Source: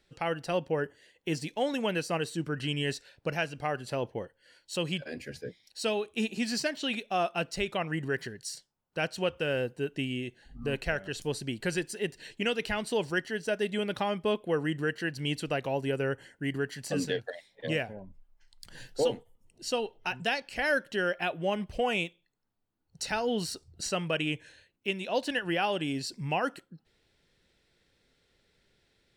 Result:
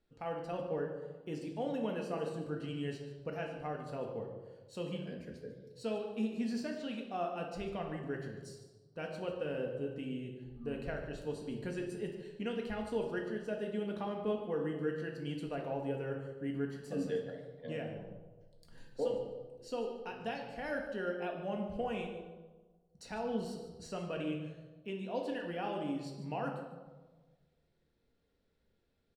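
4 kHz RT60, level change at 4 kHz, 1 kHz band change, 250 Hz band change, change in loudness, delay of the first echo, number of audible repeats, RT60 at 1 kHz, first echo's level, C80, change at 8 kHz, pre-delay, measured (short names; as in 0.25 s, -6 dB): 0.85 s, -16.0 dB, -8.0 dB, -4.5 dB, -7.5 dB, 0.147 s, 1, 1.2 s, -13.5 dB, 7.0 dB, under -15 dB, 3 ms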